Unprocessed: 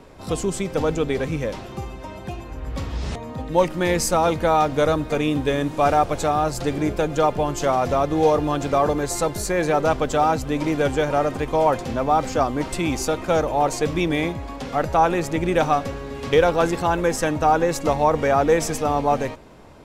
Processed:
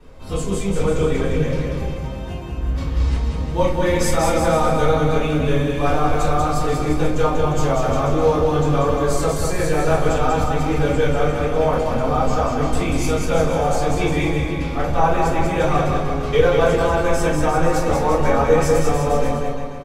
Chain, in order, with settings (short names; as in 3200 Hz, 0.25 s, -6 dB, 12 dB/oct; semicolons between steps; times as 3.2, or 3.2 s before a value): bouncing-ball echo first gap 0.19 s, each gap 0.85×, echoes 5; shoebox room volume 33 m³, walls mixed, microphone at 2.8 m; gain -14.5 dB